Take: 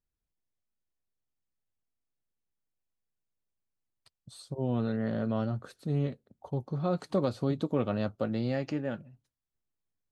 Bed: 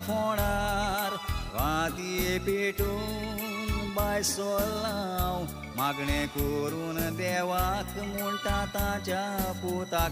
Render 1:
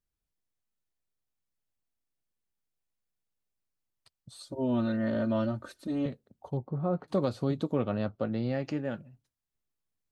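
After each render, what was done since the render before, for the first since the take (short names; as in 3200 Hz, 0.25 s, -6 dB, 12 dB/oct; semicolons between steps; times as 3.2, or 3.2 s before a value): 4.4–6.06 comb 3.3 ms, depth 94%; 6.57–7.08 LPF 1300 Hz; 7.76–8.65 air absorption 120 m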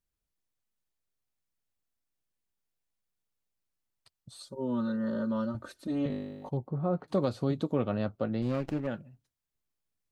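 4.49–5.55 fixed phaser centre 460 Hz, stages 8; 6.08–6.49 flutter echo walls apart 3.4 m, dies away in 1.3 s; 8.42–8.87 running maximum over 17 samples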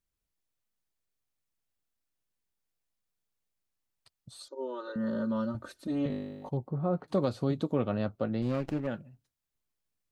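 4.48–4.96 brick-wall FIR band-pass 270–7300 Hz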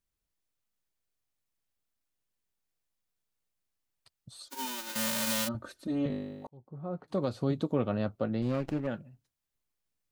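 4.49–5.47 spectral whitening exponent 0.1; 6.47–7.49 fade in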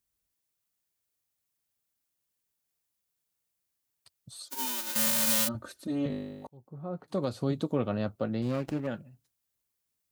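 HPF 44 Hz; high shelf 6400 Hz +9 dB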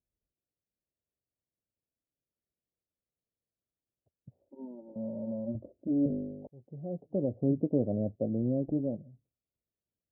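steep low-pass 660 Hz 48 dB/oct; dynamic EQ 280 Hz, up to +4 dB, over -42 dBFS, Q 4.8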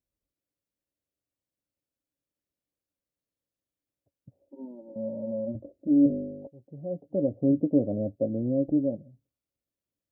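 small resonant body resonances 290/550 Hz, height 9 dB, ringing for 90 ms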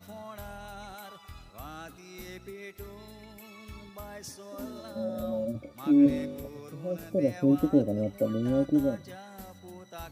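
add bed -15 dB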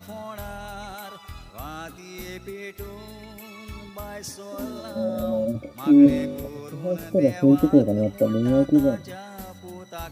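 gain +7 dB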